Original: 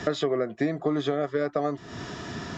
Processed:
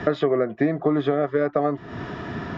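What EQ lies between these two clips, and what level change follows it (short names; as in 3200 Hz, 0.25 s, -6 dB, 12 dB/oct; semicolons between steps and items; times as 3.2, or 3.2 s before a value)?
LPF 2300 Hz 12 dB/oct; +5.0 dB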